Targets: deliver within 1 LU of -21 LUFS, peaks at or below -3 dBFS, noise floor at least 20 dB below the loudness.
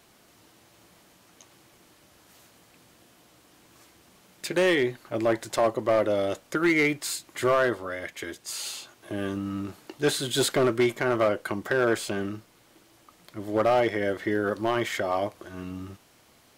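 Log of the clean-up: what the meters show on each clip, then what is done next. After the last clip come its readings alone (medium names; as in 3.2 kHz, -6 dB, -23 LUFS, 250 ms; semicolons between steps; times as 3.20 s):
clipped samples 0.7%; clipping level -16.0 dBFS; loudness -26.5 LUFS; peak level -16.0 dBFS; loudness target -21.0 LUFS
-> clip repair -16 dBFS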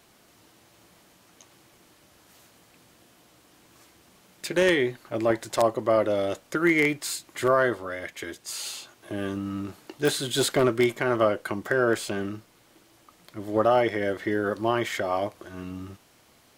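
clipped samples 0.0%; loudness -26.0 LUFS; peak level -7.0 dBFS; loudness target -21.0 LUFS
-> trim +5 dB; peak limiter -3 dBFS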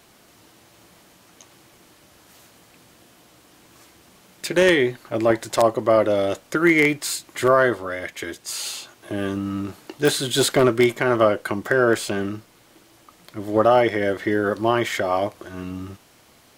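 loudness -21.0 LUFS; peak level -3.0 dBFS; noise floor -54 dBFS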